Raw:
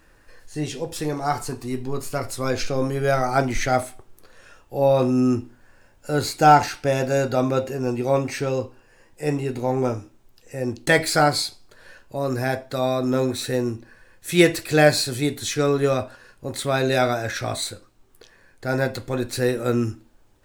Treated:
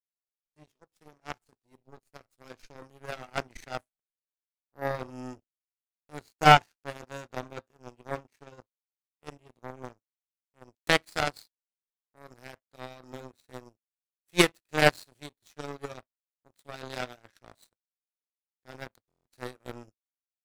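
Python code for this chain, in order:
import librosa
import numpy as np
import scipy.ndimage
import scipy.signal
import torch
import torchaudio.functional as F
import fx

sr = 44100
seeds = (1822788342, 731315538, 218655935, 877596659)

y = fx.power_curve(x, sr, exponent=3.0)
y = fx.buffer_glitch(y, sr, at_s=(19.07,), block=1024, repeats=7)
y = F.gain(torch.from_numpy(y), 2.0).numpy()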